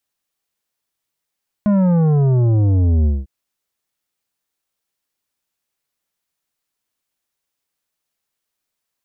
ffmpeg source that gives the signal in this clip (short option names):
-f lavfi -i "aevalsrc='0.237*clip((1.6-t)/0.2,0,1)*tanh(3.16*sin(2*PI*210*1.6/log(65/210)*(exp(log(65/210)*t/1.6)-1)))/tanh(3.16)':d=1.6:s=44100"